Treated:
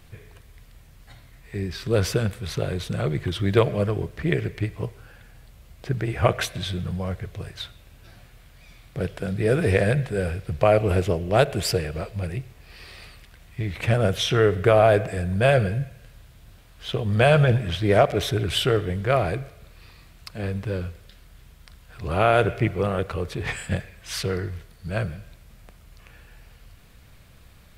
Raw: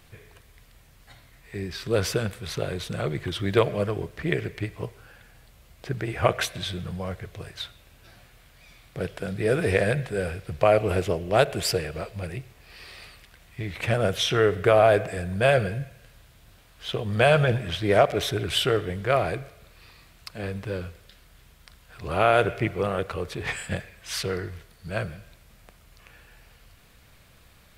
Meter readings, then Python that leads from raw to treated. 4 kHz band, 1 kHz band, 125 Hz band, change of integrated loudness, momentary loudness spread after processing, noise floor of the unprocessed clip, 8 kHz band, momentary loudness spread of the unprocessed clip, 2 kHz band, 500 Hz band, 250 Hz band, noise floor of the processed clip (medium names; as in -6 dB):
0.0 dB, +0.5 dB, +5.5 dB, +2.0 dB, 16 LU, -55 dBFS, 0.0 dB, 17 LU, 0.0 dB, +1.0 dB, +3.5 dB, -51 dBFS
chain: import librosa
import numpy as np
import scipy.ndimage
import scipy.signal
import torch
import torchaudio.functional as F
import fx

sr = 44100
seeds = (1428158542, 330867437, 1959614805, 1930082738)

y = fx.low_shelf(x, sr, hz=250.0, db=6.5)